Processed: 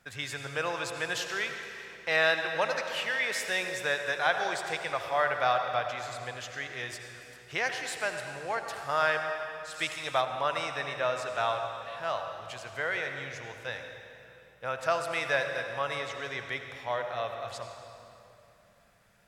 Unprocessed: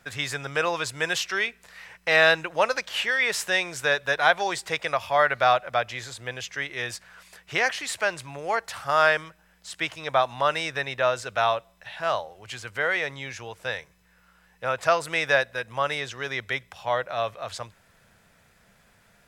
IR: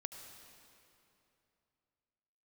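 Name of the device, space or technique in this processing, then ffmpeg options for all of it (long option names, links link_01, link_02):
stairwell: -filter_complex "[1:a]atrim=start_sample=2205[link_01];[0:a][link_01]afir=irnorm=-1:irlink=0,asplit=3[link_02][link_03][link_04];[link_02]afade=type=out:start_time=9.73:duration=0.02[link_05];[link_03]equalizer=frequency=9600:width=0.34:gain=10.5,afade=type=in:start_time=9.73:duration=0.02,afade=type=out:start_time=10.2:duration=0.02[link_06];[link_04]afade=type=in:start_time=10.2:duration=0.02[link_07];[link_05][link_06][link_07]amix=inputs=3:normalize=0,volume=-3dB"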